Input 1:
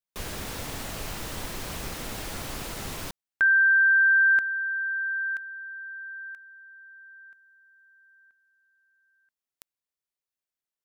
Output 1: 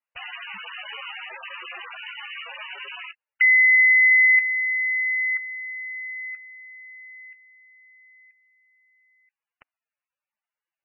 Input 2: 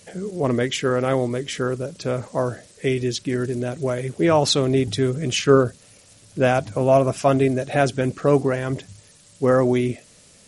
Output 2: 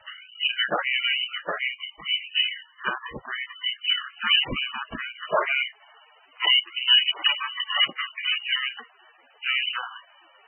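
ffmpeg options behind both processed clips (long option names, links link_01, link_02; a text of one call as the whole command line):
ffmpeg -i in.wav -filter_complex "[0:a]equalizer=frequency=210:width_type=o:width=1:gain=-6.5,acrossover=split=210|2400[link_01][link_02][link_03];[link_01]acompressor=threshold=-37dB:ratio=8:attack=16:release=26:knee=6:detection=rms[link_04];[link_02]asoftclip=type=tanh:threshold=-18dB[link_05];[link_04][link_05][link_03]amix=inputs=3:normalize=0,lowpass=frequency=3100:width_type=q:width=0.5098,lowpass=frequency=3100:width_type=q:width=0.6013,lowpass=frequency=3100:width_type=q:width=0.9,lowpass=frequency=3100:width_type=q:width=2.563,afreqshift=-3600,volume=6dB" -ar 24000 -c:a libmp3lame -b:a 8k out.mp3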